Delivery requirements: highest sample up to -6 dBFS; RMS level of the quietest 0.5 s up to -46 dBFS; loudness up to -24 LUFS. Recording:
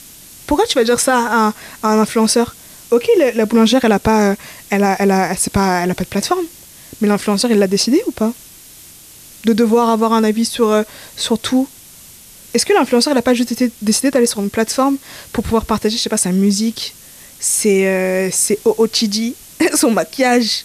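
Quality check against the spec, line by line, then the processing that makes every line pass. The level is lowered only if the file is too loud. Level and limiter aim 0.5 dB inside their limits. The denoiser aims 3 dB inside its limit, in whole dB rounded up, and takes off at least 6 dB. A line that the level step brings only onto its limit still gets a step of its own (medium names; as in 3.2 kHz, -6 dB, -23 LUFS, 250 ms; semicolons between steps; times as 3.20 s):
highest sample -3.5 dBFS: fail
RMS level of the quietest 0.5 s -40 dBFS: fail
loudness -15.0 LUFS: fail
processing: trim -9.5 dB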